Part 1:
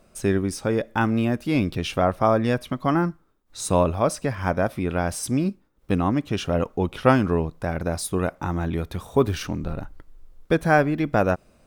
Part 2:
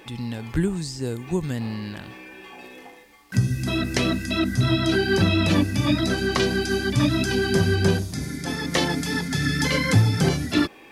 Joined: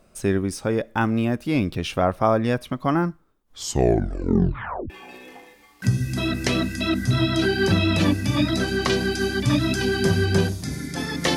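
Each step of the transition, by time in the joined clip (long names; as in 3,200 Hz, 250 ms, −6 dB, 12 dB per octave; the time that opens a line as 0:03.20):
part 1
0:03.37: tape stop 1.53 s
0:04.90: continue with part 2 from 0:02.40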